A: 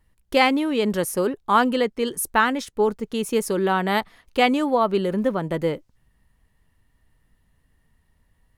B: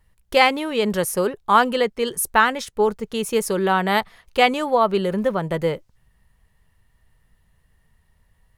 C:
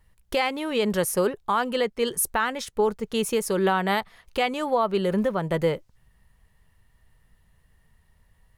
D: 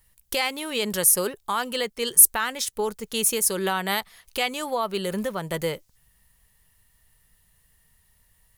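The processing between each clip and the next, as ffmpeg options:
ffmpeg -i in.wav -af "equalizer=frequency=280:width_type=o:width=0.51:gain=-10,volume=3dB" out.wav
ffmpeg -i in.wav -af "alimiter=limit=-13dB:level=0:latency=1:release=368" out.wav
ffmpeg -i in.wav -af "crystalizer=i=5:c=0,volume=-5dB" out.wav

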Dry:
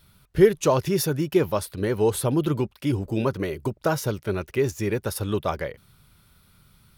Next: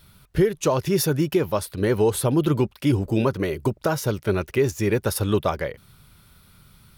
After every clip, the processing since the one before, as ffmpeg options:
ffmpeg -i in.wav -af "alimiter=limit=-15dB:level=0:latency=1:release=424,volume=4.5dB" out.wav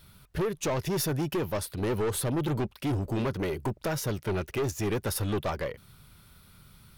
ffmpeg -i in.wav -af "aeval=exprs='(tanh(14.1*val(0)+0.15)-tanh(0.15))/14.1':channel_layout=same,volume=-2dB" out.wav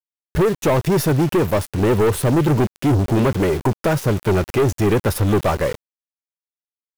ffmpeg -i in.wav -filter_complex "[0:a]aeval=exprs='val(0)+0.5*0.0126*sgn(val(0))':channel_layout=same,asplit=2[link_01][link_02];[link_02]adynamicsmooth=sensitivity=2.5:basefreq=1500,volume=2dB[link_03];[link_01][link_03]amix=inputs=2:normalize=0,aeval=exprs='val(0)*gte(abs(val(0)),0.0316)':channel_layout=same,volume=4.5dB" out.wav

